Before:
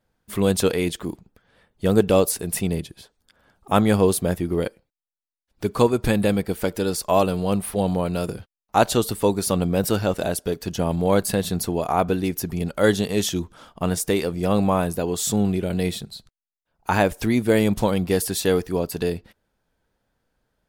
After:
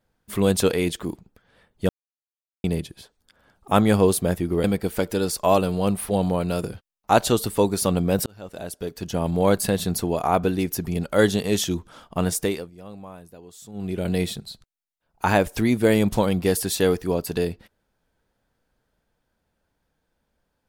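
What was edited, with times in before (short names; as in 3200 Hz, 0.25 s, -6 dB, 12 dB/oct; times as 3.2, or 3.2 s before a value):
1.89–2.64 mute
4.64–6.29 cut
9.91–11.04 fade in
14.03–15.71 dip -20.5 dB, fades 0.33 s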